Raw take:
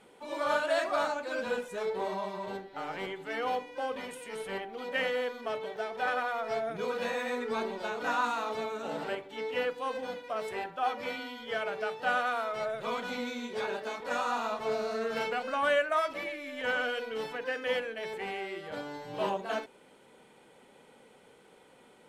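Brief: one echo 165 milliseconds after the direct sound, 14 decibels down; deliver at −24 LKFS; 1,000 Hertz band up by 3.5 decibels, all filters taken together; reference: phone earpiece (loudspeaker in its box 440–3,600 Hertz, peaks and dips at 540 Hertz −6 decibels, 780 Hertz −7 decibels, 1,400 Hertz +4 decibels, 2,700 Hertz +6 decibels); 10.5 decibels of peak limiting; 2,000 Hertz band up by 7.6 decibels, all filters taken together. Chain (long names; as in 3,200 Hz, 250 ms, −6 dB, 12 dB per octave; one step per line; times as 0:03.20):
parametric band 1,000 Hz +4.5 dB
parametric band 2,000 Hz +5 dB
brickwall limiter −23 dBFS
loudspeaker in its box 440–3,600 Hz, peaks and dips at 540 Hz −6 dB, 780 Hz −7 dB, 1,400 Hz +4 dB, 2,700 Hz +6 dB
single-tap delay 165 ms −14 dB
level +9 dB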